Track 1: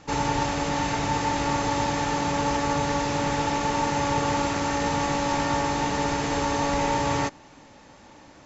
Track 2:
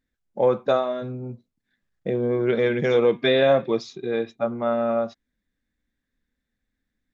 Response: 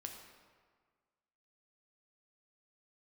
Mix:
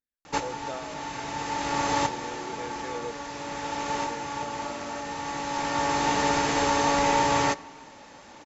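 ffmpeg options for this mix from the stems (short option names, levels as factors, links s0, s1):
-filter_complex "[0:a]adelay=250,volume=1.26,asplit=2[s0][s1];[s1]volume=0.282[s2];[1:a]volume=0.15,asplit=3[s3][s4][s5];[s3]atrim=end=3.15,asetpts=PTS-STARTPTS,afade=t=out:st=3.146:d=0.004:c=hsin[s6];[s4]atrim=start=3.15:end=3.9,asetpts=PTS-STARTPTS,volume=0[s7];[s5]atrim=start=3.9,asetpts=PTS-STARTPTS,afade=t=in:d=0.004:c=hsin[s8];[s6][s7][s8]concat=n=3:v=0:a=1,asplit=2[s9][s10];[s10]apad=whole_len=383673[s11];[s0][s11]sidechaincompress=threshold=0.00224:ratio=8:attack=16:release=859[s12];[2:a]atrim=start_sample=2205[s13];[s2][s13]afir=irnorm=-1:irlink=0[s14];[s12][s9][s14]amix=inputs=3:normalize=0,lowshelf=f=230:g=-9.5"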